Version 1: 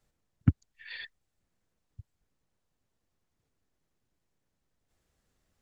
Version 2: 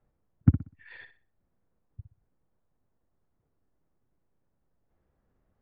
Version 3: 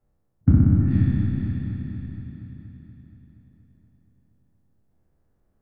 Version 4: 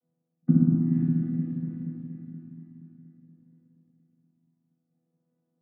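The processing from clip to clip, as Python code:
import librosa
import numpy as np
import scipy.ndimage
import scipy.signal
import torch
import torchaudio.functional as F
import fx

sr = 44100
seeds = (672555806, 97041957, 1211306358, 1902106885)

y1 = scipy.signal.sosfilt(scipy.signal.butter(2, 1200.0, 'lowpass', fs=sr, output='sos'), x)
y1 = fx.room_flutter(y1, sr, wall_m=10.6, rt60_s=0.34)
y1 = F.gain(torch.from_numpy(y1), 3.5).numpy()
y2 = fx.spec_trails(y1, sr, decay_s=2.75)
y2 = fx.peak_eq(y2, sr, hz=1700.0, db=-5.0, octaves=2.7)
y2 = fx.echo_heads(y2, sr, ms=237, heads='first and second', feedback_pct=54, wet_db=-10)
y3 = fx.chord_vocoder(y2, sr, chord='bare fifth', root=52)
y3 = fx.high_shelf(y3, sr, hz=2000.0, db=-10.5)
y3 = F.gain(torch.from_numpy(y3), -2.0).numpy()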